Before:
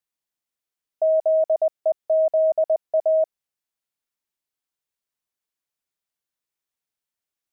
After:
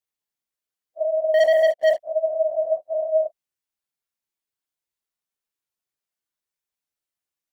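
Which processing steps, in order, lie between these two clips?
phase randomisation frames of 100 ms; 1.34–1.99 s: waveshaping leveller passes 3; trim -2 dB

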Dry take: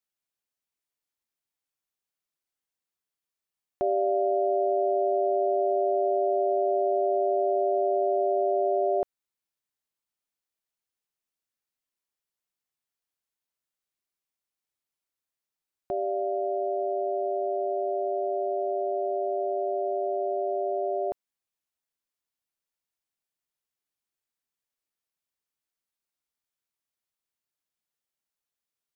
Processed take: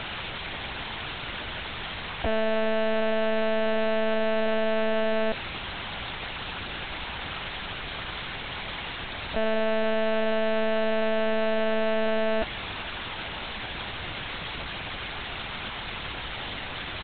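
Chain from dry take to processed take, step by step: one-bit comparator; Chebyshev shaper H 3 -15 dB, 5 -31 dB, 6 -16 dB, 8 -29 dB, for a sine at -30 dBFS; tempo 1.7×; monotone LPC vocoder at 8 kHz 220 Hz; trim +6 dB

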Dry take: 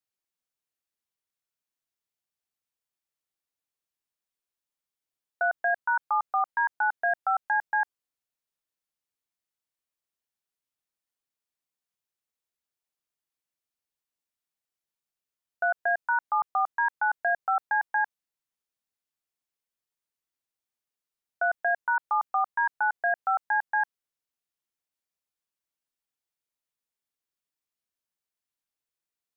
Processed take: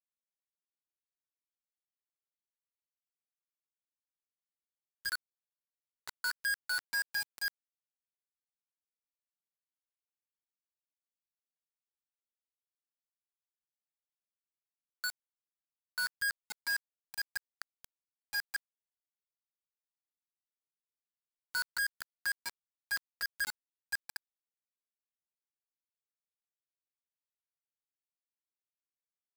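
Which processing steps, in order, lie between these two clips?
slices played last to first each 119 ms, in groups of 6; inverse Chebyshev band-stop 310–690 Hz, stop band 60 dB; flange 0.23 Hz, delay 7.3 ms, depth 2.5 ms, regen -17%; bit crusher 5-bit; trim -4.5 dB

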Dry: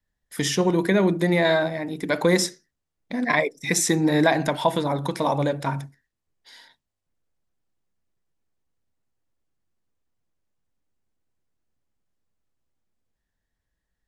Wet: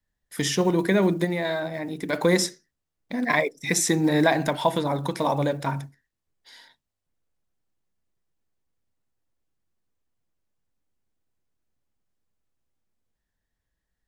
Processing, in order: block-companded coder 7-bit; 1.24–2.13 s: compression 2.5:1, threshold -25 dBFS, peak gain reduction 6.5 dB; trim -1 dB

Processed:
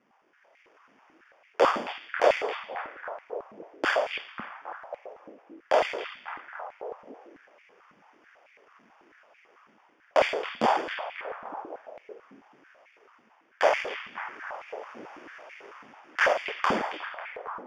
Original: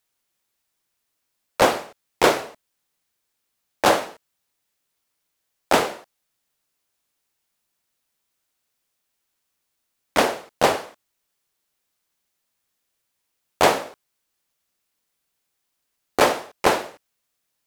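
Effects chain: 13.65–16.37 s: tilt EQ +3.5 dB/octave; sample-and-hold 11×; level rider gain up to 8 dB; distance through air 140 m; compression 4:1, threshold -30 dBFS, peak gain reduction 18 dB; peak limiter -21 dBFS, peak gain reduction 10 dB; repeats whose band climbs or falls 272 ms, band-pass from 2.7 kHz, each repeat -0.7 oct, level -4 dB; step-sequenced high-pass 9.1 Hz 220–2200 Hz; trim +6.5 dB

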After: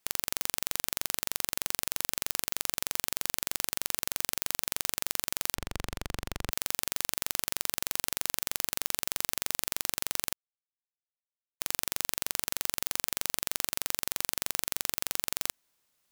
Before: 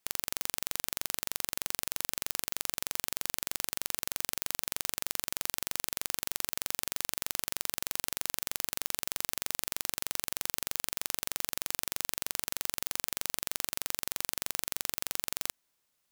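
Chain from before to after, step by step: 5.55–6.51 s: RIAA curve playback; 10.33–11.60 s: mute; trim +2.5 dB

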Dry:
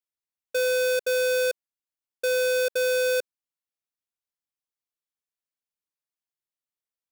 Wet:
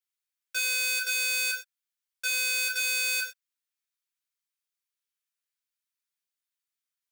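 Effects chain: high-pass 1.2 kHz 24 dB/octave; gated-style reverb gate 140 ms falling, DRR -1 dB

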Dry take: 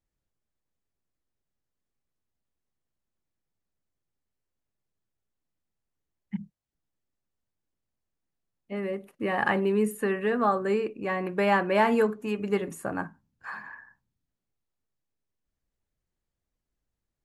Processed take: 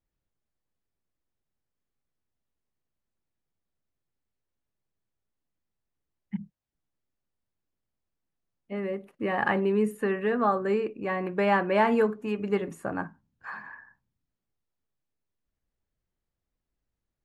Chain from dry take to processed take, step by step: low-pass 3.5 kHz 6 dB/octave

